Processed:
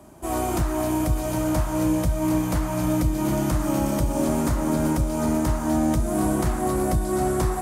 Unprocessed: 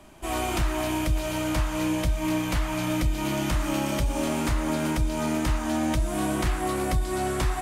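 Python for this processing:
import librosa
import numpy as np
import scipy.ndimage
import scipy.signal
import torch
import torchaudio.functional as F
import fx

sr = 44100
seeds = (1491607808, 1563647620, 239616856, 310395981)

p1 = scipy.signal.sosfilt(scipy.signal.butter(2, 60.0, 'highpass', fs=sr, output='sos'), x)
p2 = fx.peak_eq(p1, sr, hz=2800.0, db=-13.5, octaves=1.8)
p3 = p2 + fx.echo_single(p2, sr, ms=762, db=-10.0, dry=0)
y = p3 * librosa.db_to_amplitude(5.0)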